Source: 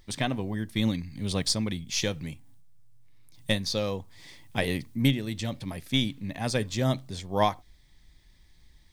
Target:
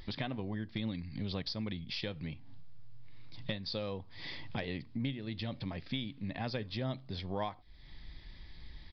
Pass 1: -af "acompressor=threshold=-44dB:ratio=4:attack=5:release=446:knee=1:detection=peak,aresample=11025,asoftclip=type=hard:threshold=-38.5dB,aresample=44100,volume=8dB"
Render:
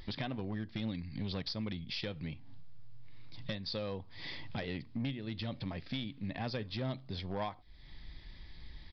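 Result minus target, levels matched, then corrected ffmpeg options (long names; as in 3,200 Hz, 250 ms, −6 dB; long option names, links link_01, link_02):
hard clipping: distortion +16 dB
-af "acompressor=threshold=-44dB:ratio=4:attack=5:release=446:knee=1:detection=peak,aresample=11025,asoftclip=type=hard:threshold=-32dB,aresample=44100,volume=8dB"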